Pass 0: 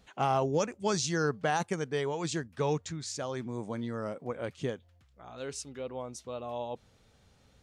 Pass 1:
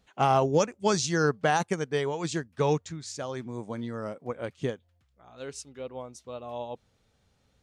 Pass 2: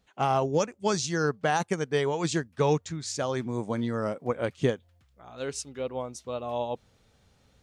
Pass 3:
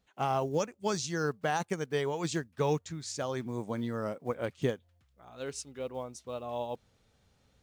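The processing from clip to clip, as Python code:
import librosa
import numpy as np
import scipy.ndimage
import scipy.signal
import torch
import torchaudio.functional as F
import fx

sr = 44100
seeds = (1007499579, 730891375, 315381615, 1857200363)

y1 = fx.upward_expand(x, sr, threshold_db=-48.0, expansion=1.5)
y1 = F.gain(torch.from_numpy(y1), 6.0).numpy()
y2 = fx.rider(y1, sr, range_db=4, speed_s=0.5)
y2 = F.gain(torch.from_numpy(y2), 1.5).numpy()
y3 = fx.block_float(y2, sr, bits=7)
y3 = F.gain(torch.from_numpy(y3), -5.0).numpy()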